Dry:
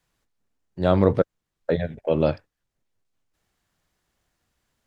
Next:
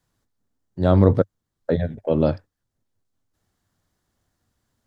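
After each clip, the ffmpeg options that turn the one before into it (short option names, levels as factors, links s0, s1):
-af "equalizer=f=100:t=o:w=0.67:g=8,equalizer=f=250:t=o:w=0.67:g=5,equalizer=f=2500:t=o:w=0.67:g=-7"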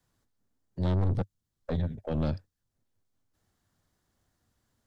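-filter_complex "[0:a]acrossover=split=200|3000[s0][s1][s2];[s1]acompressor=threshold=0.00398:ratio=1.5[s3];[s0][s3][s2]amix=inputs=3:normalize=0,aeval=exprs='(tanh(15.8*val(0)+0.5)-tanh(0.5))/15.8':c=same"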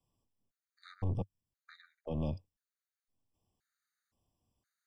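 -af "afftfilt=real='re*gt(sin(2*PI*0.97*pts/sr)*(1-2*mod(floor(b*sr/1024/1200),2)),0)':imag='im*gt(sin(2*PI*0.97*pts/sr)*(1-2*mod(floor(b*sr/1024/1200),2)),0)':win_size=1024:overlap=0.75,volume=0.501"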